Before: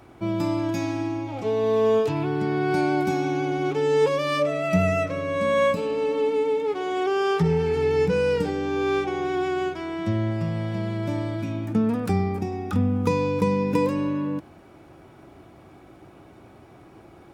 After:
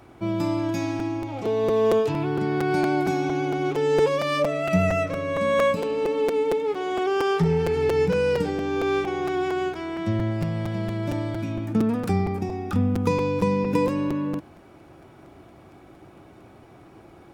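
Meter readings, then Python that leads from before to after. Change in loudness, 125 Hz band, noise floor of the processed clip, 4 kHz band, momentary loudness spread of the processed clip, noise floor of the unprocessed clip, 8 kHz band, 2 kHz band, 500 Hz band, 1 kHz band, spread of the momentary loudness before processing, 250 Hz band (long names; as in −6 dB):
0.0 dB, 0.0 dB, −50 dBFS, 0.0 dB, 7 LU, −50 dBFS, can't be measured, 0.0 dB, 0.0 dB, 0.0 dB, 7 LU, 0.0 dB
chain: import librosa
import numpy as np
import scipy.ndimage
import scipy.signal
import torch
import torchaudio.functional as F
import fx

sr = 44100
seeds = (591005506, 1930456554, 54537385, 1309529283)

y = fx.buffer_crackle(x, sr, first_s=0.99, period_s=0.23, block=256, kind='repeat')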